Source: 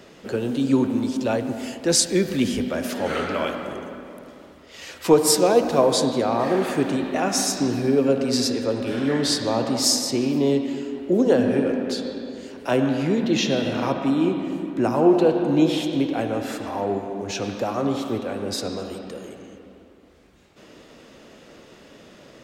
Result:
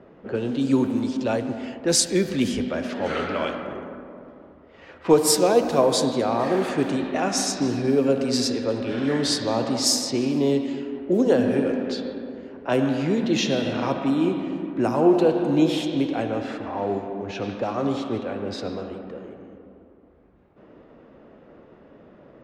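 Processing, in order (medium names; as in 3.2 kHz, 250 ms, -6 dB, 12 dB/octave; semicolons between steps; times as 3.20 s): level-controlled noise filter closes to 1.1 kHz, open at -16.5 dBFS; trim -1 dB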